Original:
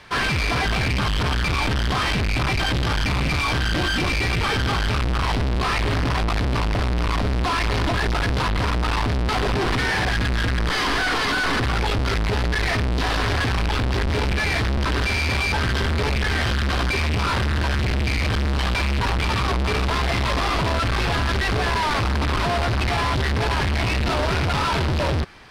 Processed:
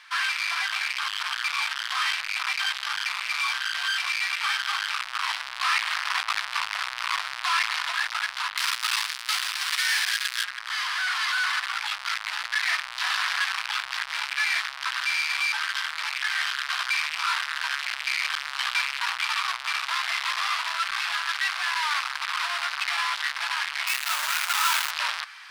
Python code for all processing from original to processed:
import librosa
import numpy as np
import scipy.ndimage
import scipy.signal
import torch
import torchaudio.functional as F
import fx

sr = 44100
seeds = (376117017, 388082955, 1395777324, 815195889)

y = fx.chain(x, sr, fx.tilt_eq(slope=4.5),
    fx.quant_companded(bits=6), at=(8.57, 10.44))
y = fx.chain(y, sr, fx.halfwave_hold(),
    fx.highpass(hz=87.0, slope=12), at=(23.87, 24.91))
y = scipy.signal.sosfilt(scipy.signal.cheby2(4, 50, 430.0, 'highpass', fs=sr, output='sos'), y)
y = fx.rider(y, sr, range_db=10, speed_s=2.0)
y = y * 10.0 ** (-1.5 / 20.0)